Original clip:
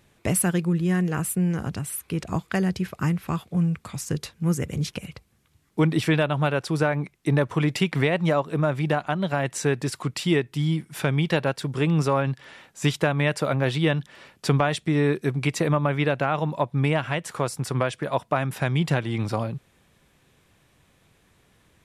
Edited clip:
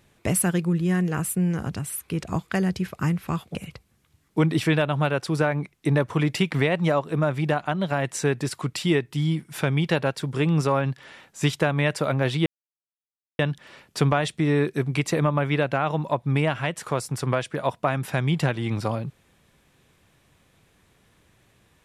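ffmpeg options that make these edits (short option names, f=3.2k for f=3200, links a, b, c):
-filter_complex "[0:a]asplit=3[a][b][c];[a]atrim=end=3.552[d];[b]atrim=start=4.958:end=13.87,asetpts=PTS-STARTPTS,afade=t=out:st=8.908:d=0.004:c=hsin,apad=pad_dur=0.93[e];[c]atrim=start=13.87,asetpts=PTS-STARTPTS,afade=t=in:d=0.004:c=hsin[f];[e][f]concat=n=2:v=0:a=1[g];[d][g]acrossfade=d=0.004:c1=hsin:c2=hsin"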